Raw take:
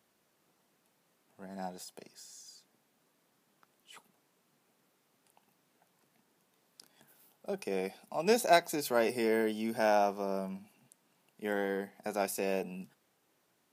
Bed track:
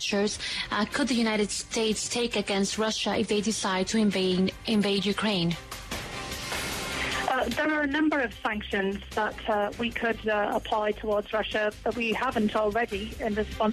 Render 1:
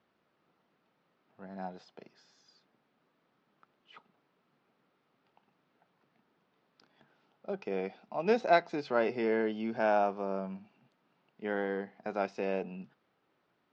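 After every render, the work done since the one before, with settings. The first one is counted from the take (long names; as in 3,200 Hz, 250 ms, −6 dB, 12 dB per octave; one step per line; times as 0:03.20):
Bessel low-pass filter 2,900 Hz, order 8
parametric band 1,300 Hz +5 dB 0.21 octaves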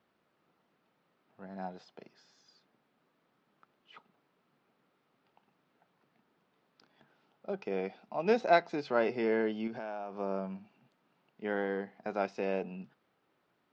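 0:09.67–0:10.17: downward compressor 8 to 1, threshold −36 dBFS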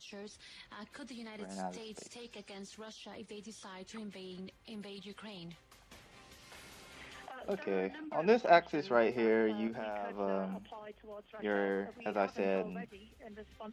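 mix in bed track −22 dB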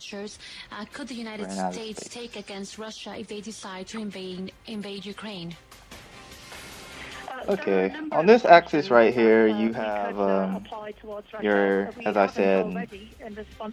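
level +12 dB
brickwall limiter −2 dBFS, peak gain reduction 1 dB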